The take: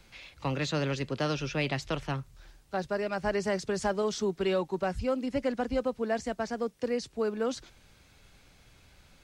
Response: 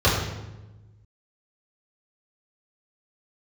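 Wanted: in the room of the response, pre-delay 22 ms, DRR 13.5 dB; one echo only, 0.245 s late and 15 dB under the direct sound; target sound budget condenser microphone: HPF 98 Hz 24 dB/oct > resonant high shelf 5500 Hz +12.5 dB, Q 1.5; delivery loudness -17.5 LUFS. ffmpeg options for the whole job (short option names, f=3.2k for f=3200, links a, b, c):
-filter_complex "[0:a]aecho=1:1:245:0.178,asplit=2[a][b];[1:a]atrim=start_sample=2205,adelay=22[c];[b][c]afir=irnorm=-1:irlink=0,volume=-33.5dB[d];[a][d]amix=inputs=2:normalize=0,highpass=f=98:w=0.5412,highpass=f=98:w=1.3066,highshelf=f=5.5k:t=q:w=1.5:g=12.5,volume=13.5dB"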